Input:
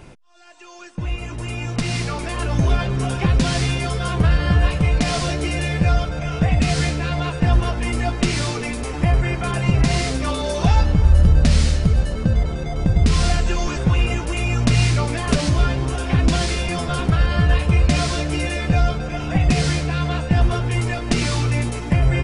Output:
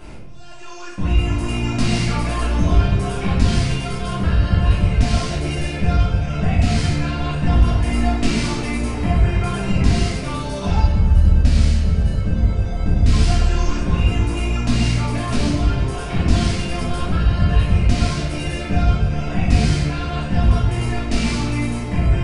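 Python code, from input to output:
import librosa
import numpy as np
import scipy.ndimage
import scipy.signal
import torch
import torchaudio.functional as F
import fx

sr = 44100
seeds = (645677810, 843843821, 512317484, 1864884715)

y = fx.rider(x, sr, range_db=10, speed_s=2.0)
y = fx.room_shoebox(y, sr, seeds[0], volume_m3=300.0, walls='mixed', distance_m=2.9)
y = y * librosa.db_to_amplitude(-10.0)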